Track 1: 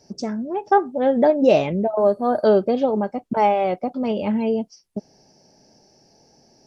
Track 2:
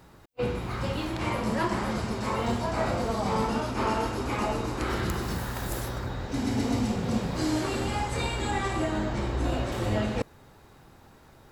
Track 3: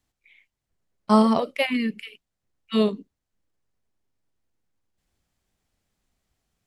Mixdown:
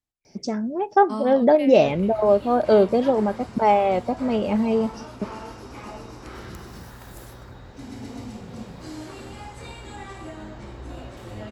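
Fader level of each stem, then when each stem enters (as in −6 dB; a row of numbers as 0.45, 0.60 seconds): 0.0, −9.5, −13.5 decibels; 0.25, 1.45, 0.00 seconds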